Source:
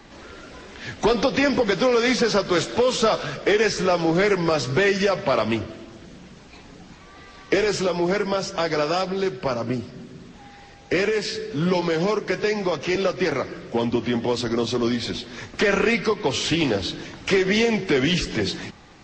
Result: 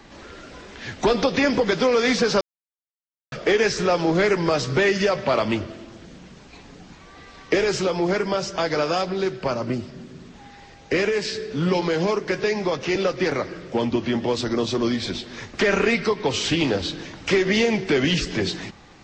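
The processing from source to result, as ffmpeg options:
-filter_complex "[0:a]asplit=3[a][b][c];[a]atrim=end=2.41,asetpts=PTS-STARTPTS,afade=t=out:st=2.406:d=0.004:c=hsin[d];[b]atrim=start=2.41:end=3.32,asetpts=PTS-STARTPTS,volume=0[e];[c]atrim=start=3.32,asetpts=PTS-STARTPTS,afade=t=in:d=0.004:c=hsin[f];[d][e][f]concat=n=3:v=0:a=1"

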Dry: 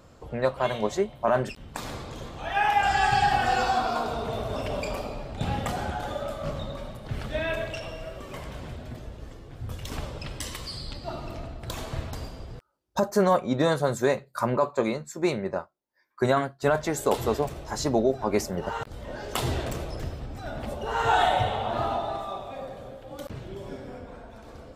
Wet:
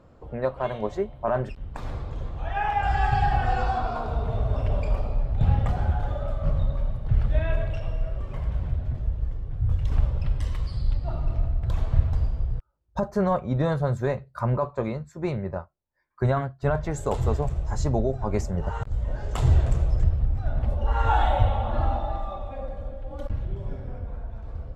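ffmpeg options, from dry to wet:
-filter_complex "[0:a]asettb=1/sr,asplit=3[a][b][c];[a]atrim=end=16.914[d];[b]atrim=start=16.91:end=20.04,asetpts=PTS-STARTPTS,afade=t=in:d=0.004:c=qsin,afade=t=out:st=3.126:d=0.004:c=qsin,equalizer=f=7.3k:w=2:g=11.5[e];[c]atrim=start=20.036[f];[d][e]acrossfade=d=0.004:c1=hsin:c2=qsin[g];[g][f]acrossfade=d=0.004:c1=qsin:c2=hsin,asettb=1/sr,asplit=3[h][i][j];[h]atrim=end=20.784[k];[i]atrim=start=20.78:end=23.45,asetpts=PTS-STARTPTS,afade=t=in:d=0.004:c=qsin,afade=t=out:st=2.666:d=0.004:c=qsin,aecho=1:1:3.6:0.67,atrim=end_sample=117747[l];[j]atrim=start=23.446[m];[k][l]acrossfade=d=0.004:c1=hsin:c2=qsin[n];[n][m]acrossfade=d=0.004:c1=qsin:c2=hsin,lowpass=f=1.1k:p=1,asubboost=boost=8:cutoff=96"

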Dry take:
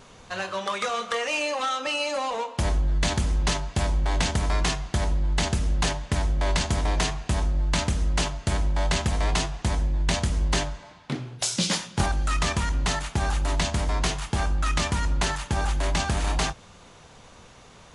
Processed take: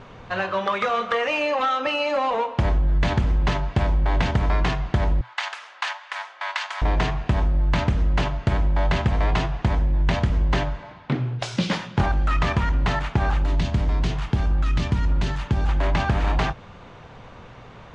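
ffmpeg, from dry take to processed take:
-filter_complex "[0:a]asettb=1/sr,asplit=3[a][b][c];[a]atrim=end=5.214[d];[b]atrim=start=5.21:end=6.82,asetpts=PTS-STARTPTS,afade=t=in:d=0.004:c=qsin,afade=t=out:st=1.606:d=0.004:c=qsin,highpass=f=980:w=0.5412,highpass=f=980:w=1.3066[e];[c]atrim=start=6.816[f];[d][e]acrossfade=d=0.004:c1=hsin:c2=qsin[g];[g][f]acrossfade=d=0.004:c1=qsin:c2=hsin,asettb=1/sr,asplit=3[h][i][j];[h]atrim=end=13.444[k];[i]atrim=start=13.44:end=15.69,asetpts=PTS-STARTPTS,afade=t=in:d=0.004:c=qsin,afade=t=out:st=2.246:d=0.004:c=qsin,acrossover=split=390|3000[l][m][n];[m]acompressor=threshold=-40dB:ratio=4:attack=3.2:release=140:knee=2.83:detection=peak[o];[l][o][n]amix=inputs=3:normalize=0[p];[j]atrim=start=15.686[q];[k][p]acrossfade=d=0.004:c1=hsin:c2=qsin[r];[r][q]acrossfade=d=0.004:c1=qsin:c2=hsin,equalizer=f=120:w=5.5:g=6.5,acompressor=threshold=-25dB:ratio=2,lowpass=2.5k,volume=6.5dB"

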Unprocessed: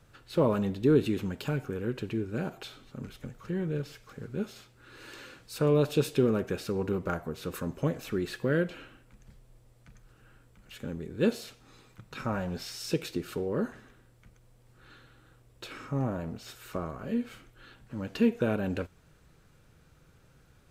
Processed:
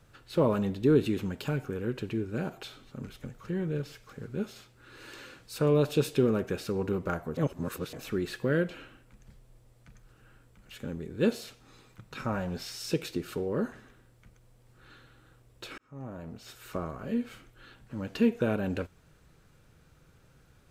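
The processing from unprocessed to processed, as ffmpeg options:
-filter_complex "[0:a]asplit=4[a][b][c][d];[a]atrim=end=7.372[e];[b]atrim=start=7.368:end=7.932,asetpts=PTS-STARTPTS,areverse[f];[c]atrim=start=7.928:end=15.78,asetpts=PTS-STARTPTS,afade=t=out:st=7.848:d=0.004:c=hsin[g];[d]atrim=start=15.78,asetpts=PTS-STARTPTS,afade=t=in:d=0.92[h];[e][f]acrossfade=d=0.004:c1=hsin:c2=hsin[i];[g][h]concat=n=2:v=0:a=1[j];[i][j]acrossfade=d=0.004:c1=hsin:c2=hsin"

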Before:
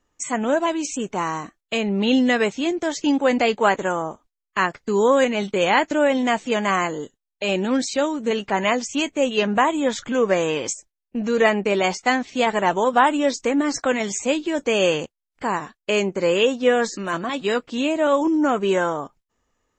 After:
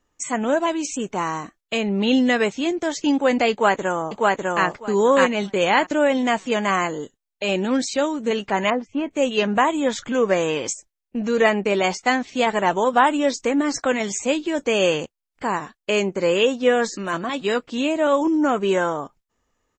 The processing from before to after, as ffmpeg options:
-filter_complex "[0:a]asplit=2[a][b];[b]afade=t=in:st=3.51:d=0.01,afade=t=out:st=4.66:d=0.01,aecho=0:1:600|1200|1800:0.891251|0.133688|0.0200531[c];[a][c]amix=inputs=2:normalize=0,asettb=1/sr,asplit=3[d][e][f];[d]atrim=end=8.704[g];[e]atrim=start=8.7:end=9.11,asetpts=PTS-STARTPTS,afade=t=in:d=0.004:c=qsin,afade=t=out:st=0.406:d=0.004:c=qsin,lowpass=1.3k[h];[f]atrim=start=9.106[i];[g][h]acrossfade=d=0.004:c1=hsin:c2=qsin[j];[j][i]acrossfade=d=0.004:c1=qsin:c2=hsin"

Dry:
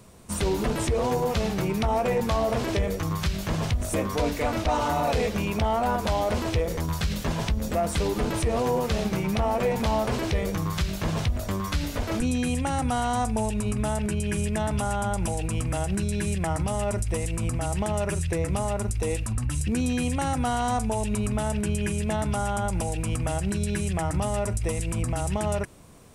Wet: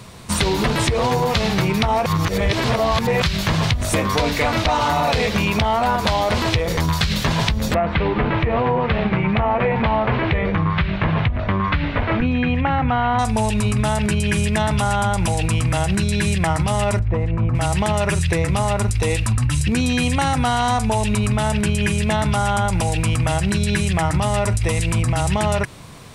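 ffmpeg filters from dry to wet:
-filter_complex "[0:a]asettb=1/sr,asplit=3[a][b][c];[a]atrim=end=7.744[d];[b]atrim=start=7.74:end=13.19,asetpts=PTS-STARTPTS,afade=t=in:d=0.004:c=qsin,afade=t=out:st=5.446:d=0.004:c=qsin,lowpass=f=2.6k:w=0.5412,lowpass=f=2.6k:w=1.3066[e];[c]atrim=start=13.186[f];[d][e]acrossfade=d=0.004:c1=hsin:c2=qsin[g];[g][f]acrossfade=d=0.004:c1=qsin:c2=hsin,asettb=1/sr,asplit=3[h][i][j];[h]atrim=end=16.994[k];[i]atrim=start=16.99:end=17.55,asetpts=PTS-STARTPTS,afade=t=in:d=0.004:c=qsin,afade=t=out:st=0.556:d=0.004:c=qsin,lowpass=1.2k[l];[j]atrim=start=17.546[m];[k][l]acrossfade=d=0.004:c1=hsin:c2=qsin[n];[n][m]acrossfade=d=0.004:c1=qsin:c2=hsin,asplit=3[o][p][q];[o]atrim=end=2.062[r];[p]atrim=start=2.058:end=3.222,asetpts=PTS-STARTPTS,areverse[s];[q]atrim=start=3.218[t];[r][s]acrossfade=d=0.004:c1=hsin:c2=hsin[u];[u][t]acrossfade=d=0.004:c1=hsin:c2=hsin,equalizer=f=125:t=o:w=1:g=7,equalizer=f=1k:t=o:w=1:g=5,equalizer=f=2k:t=o:w=1:g=6,equalizer=f=4k:t=o:w=1:g=9,acompressor=threshold=-22dB:ratio=6,volume=7dB"

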